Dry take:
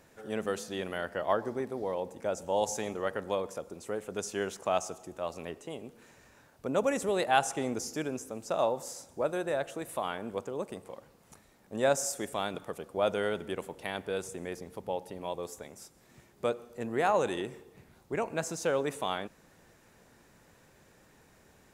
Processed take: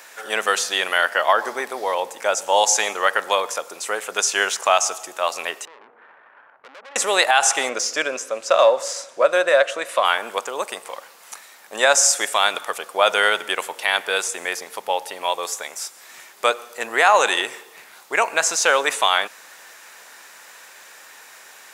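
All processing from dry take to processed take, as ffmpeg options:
ffmpeg -i in.wav -filter_complex "[0:a]asettb=1/sr,asplit=3[link_01][link_02][link_03];[link_01]atrim=end=5.654[link_04];[link_02]atrim=start=5.65:end=6.96,asetpts=PTS-STARTPTS,afade=type=in:duration=0.004:curve=qsin,afade=type=out:start_time=1.306:duration=0.004:curve=qsin,lowpass=frequency=1500:width=0.5412,lowpass=frequency=1500:width=1.3066,acompressor=threshold=-41dB:ratio=10:attack=3.2:release=140:knee=1:detection=peak,aeval=exprs='(tanh(398*val(0)+0.7)-tanh(0.7))/398':channel_layout=same[link_05];[link_03]atrim=start=6.956[link_06];[link_04][link_05]acrossfade=duration=0.004:curve1=hsin:curve2=qsin[link_07];[link_07][link_06]acrossfade=duration=0.004:curve1=qsin:curve2=hsin,asettb=1/sr,asplit=3[link_08][link_09][link_10];[link_08]atrim=end=7.694[link_11];[link_09]atrim=start=7.69:end=10.05,asetpts=PTS-STARTPTS,afade=type=in:duration=0.004:curve=qsin,afade=type=out:start_time=2.356:duration=0.004:curve=qsin,equalizer=frequency=550:width=7.2:gain=10.5,bandreject=frequency=840:width=5.2,adynamicsmooth=sensitivity=3:basefreq=5700[link_12];[link_10]atrim=start=10.046[link_13];[link_11][link_12]acrossfade=duration=0.004:curve1=hsin:curve2=qsin[link_14];[link_14][link_13]acrossfade=duration=0.004:curve1=qsin:curve2=hsin,acrossover=split=8600[link_15][link_16];[link_16]acompressor=threshold=-57dB:ratio=4:attack=1:release=60[link_17];[link_15][link_17]amix=inputs=2:normalize=0,highpass=1100,alimiter=level_in=24.5dB:limit=-1dB:release=50:level=0:latency=1,volume=-3dB" out.wav

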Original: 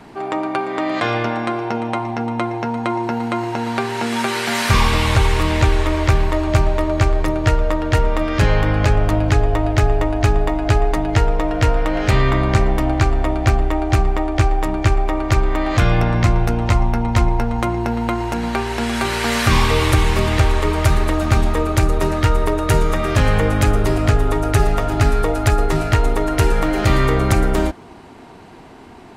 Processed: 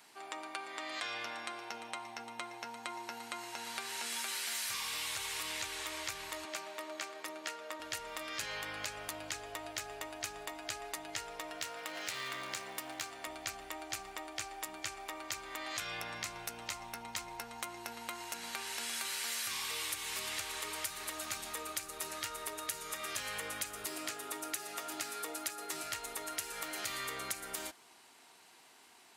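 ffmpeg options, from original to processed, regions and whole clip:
ffmpeg -i in.wav -filter_complex "[0:a]asettb=1/sr,asplit=3[link_01][link_02][link_03];[link_01]atrim=end=6.454[link_04];[link_02]atrim=start=6.45:end=7.8,asetpts=PTS-STARTPTS,afade=type=in:duration=0.004:curve=qsin,afade=type=out:start_time=1.346:duration=0.004:curve=qsin,highpass=frequency=200:width=0.5412,highpass=frequency=200:width=1.3066,highshelf=frequency=4600:gain=-7.5[link_05];[link_03]atrim=start=7.796[link_06];[link_04][link_05]acrossfade=duration=0.004:curve1=hsin:curve2=qsin[link_07];[link_07][link_06]acrossfade=duration=0.004:curve1=qsin:curve2=hsin,asettb=1/sr,asplit=3[link_08][link_09][link_10];[link_08]atrim=end=11.614[link_11];[link_09]atrim=start=11.61:end=13.27,asetpts=PTS-STARTPTS,afade=type=in:duration=0.004:curve=qsin,afade=type=out:start_time=1.656:duration=0.004:curve=qsin,highpass=110,aeval=exprs='clip(val(0),-1,0.141)':channel_layout=same[link_12];[link_10]atrim=start=13.266[link_13];[link_11][link_12]acrossfade=duration=0.004:curve1=hsin:curve2=qsin[link_14];[link_14][link_13]acrossfade=duration=0.004:curve1=qsin:curve2=hsin,asettb=1/sr,asplit=3[link_15][link_16][link_17];[link_15]atrim=end=23.864[link_18];[link_16]atrim=start=23.86:end=25.83,asetpts=PTS-STARTPTS,afade=type=in:duration=0.004:curve=qsin,afade=type=out:start_time=1.966:duration=0.004:curve=qsin,highpass=170,equalizer=frequency=330:width_type=o:width=0.26:gain=9.5[link_19];[link_17]atrim=start=25.826[link_20];[link_18][link_19]acrossfade=duration=0.004:curve1=hsin:curve2=qsin[link_21];[link_21][link_20]acrossfade=duration=0.004:curve1=qsin:curve2=hsin,aderivative,acompressor=threshold=-33dB:ratio=6,volume=-2.5dB" out.wav

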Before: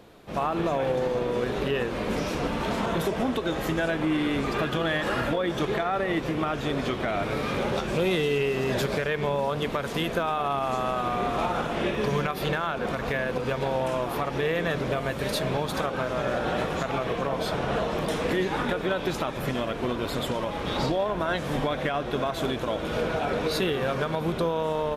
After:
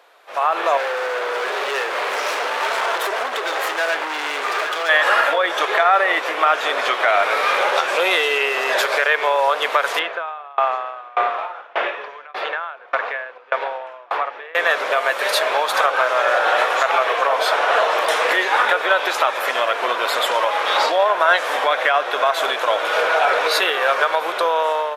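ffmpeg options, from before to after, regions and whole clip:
ffmpeg -i in.wav -filter_complex "[0:a]asettb=1/sr,asplit=3[link_01][link_02][link_03];[link_01]atrim=end=0.774[link_04];[link_02]atrim=start=0.77:end=4.89,asetpts=PTS-STARTPTS,afade=type=in:duration=0.004:curve=qsin,afade=type=out:start_time=4.116:duration=0.004:curve=qsin,volume=30.5dB,asoftclip=hard,volume=-30.5dB,equalizer=frequency=400:width_type=o:width=0.25:gain=5.5[link_05];[link_03]atrim=start=4.886[link_06];[link_04][link_05]acrossfade=duration=0.004:curve1=hsin:curve2=qsin[link_07];[link_07][link_06]acrossfade=duration=0.004:curve1=qsin:curve2=hsin,asettb=1/sr,asplit=3[link_08][link_09][link_10];[link_08]atrim=end=9.994[link_11];[link_09]atrim=start=9.99:end=14.55,asetpts=PTS-STARTPTS,afade=type=in:duration=0.004:curve=qsin,afade=type=out:start_time=4.556:duration=0.004:curve=qsin,lowpass=2900,aeval=exprs='val(0)*pow(10,-29*if(lt(mod(1.7*n/s,1),2*abs(1.7)/1000),1-mod(1.7*n/s,1)/(2*abs(1.7)/1000),(mod(1.7*n/s,1)-2*abs(1.7)/1000)/(1-2*abs(1.7)/1000))/20)':channel_layout=same[link_12];[link_10]atrim=start=14.546[link_13];[link_11][link_12]acrossfade=duration=0.004:curve1=hsin:curve2=qsin[link_14];[link_14][link_13]acrossfade=duration=0.004:curve1=qsin:curve2=hsin,highpass=frequency=540:width=0.5412,highpass=frequency=540:width=1.3066,equalizer=frequency=1500:width_type=o:width=1.8:gain=6.5,dynaudnorm=framelen=190:gausssize=5:maxgain=10.5dB" out.wav

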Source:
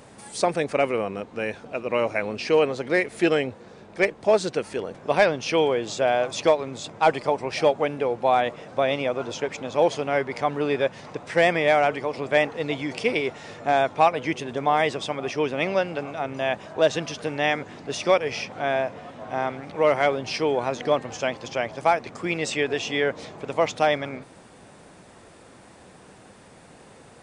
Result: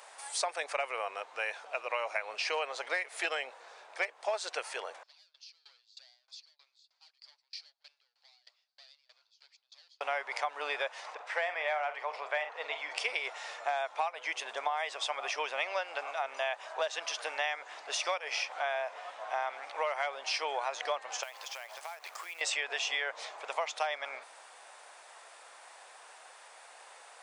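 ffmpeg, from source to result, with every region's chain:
ffmpeg -i in.wav -filter_complex "[0:a]asettb=1/sr,asplit=3[link_01][link_02][link_03];[link_01]atrim=end=5.034[link_04];[link_02]atrim=start=5.03:end=10.01,asetpts=PTS-STARTPTS,afade=type=in:duration=0.004:curve=qsin,afade=type=out:start_time=4.976:duration=0.004:curve=qsin,asoftclip=type=hard:threshold=-24dB,bandpass=frequency=4500:width_type=q:width=8.1,aeval=exprs='val(0)*pow(10,-25*if(lt(mod(3.2*n/s,1),2*abs(3.2)/1000),1-mod(3.2*n/s,1)/(2*abs(3.2)/1000),(mod(3.2*n/s,1)-2*abs(3.2)/1000)/(1-2*abs(3.2)/1000))/20)':channel_layout=same[link_05];[link_03]atrim=start=10.006[link_06];[link_04][link_05]acrossfade=duration=0.004:curve1=hsin:curve2=qsin[link_07];[link_07][link_06]acrossfade=duration=0.004:curve1=qsin:curve2=hsin,asettb=1/sr,asplit=3[link_08][link_09][link_10];[link_08]atrim=end=11.144[link_11];[link_09]atrim=start=11.14:end=12.96,asetpts=PTS-STARTPTS,afade=type=in:duration=0.004:curve=qsin,afade=type=out:start_time=1.816:duration=0.004:curve=qsin,lowpass=frequency=2000:poles=1,equalizer=frequency=230:width_type=o:width=1.5:gain=-7.5,asplit=2[link_12][link_13];[link_13]adelay=46,volume=-11dB[link_14];[link_12][link_14]amix=inputs=2:normalize=0,atrim=end_sample=80262[link_15];[link_10]atrim=start=12.956[link_16];[link_11][link_15]acrossfade=duration=0.004:curve1=hsin:curve2=qsin[link_17];[link_17][link_16]acrossfade=duration=0.004:curve1=qsin:curve2=hsin,asettb=1/sr,asplit=3[link_18][link_19][link_20];[link_18]atrim=end=21.234[link_21];[link_19]atrim=start=21.23:end=22.41,asetpts=PTS-STARTPTS,afade=type=in:duration=0.004:curve=qsin,afade=type=out:start_time=1.176:duration=0.004:curve=qsin,equalizer=frequency=240:width=0.36:gain=-6,acompressor=threshold=-36dB:ratio=20:attack=3.2:release=140:knee=1:detection=peak,acrusher=bits=3:mode=log:mix=0:aa=0.000001[link_22];[link_20]atrim=start=22.406[link_23];[link_21][link_22]acrossfade=duration=0.004:curve1=hsin:curve2=qsin[link_24];[link_24][link_23]acrossfade=duration=0.004:curve1=qsin:curve2=hsin,highpass=frequency=700:width=0.5412,highpass=frequency=700:width=1.3066,acompressor=threshold=-29dB:ratio=12" out.wav

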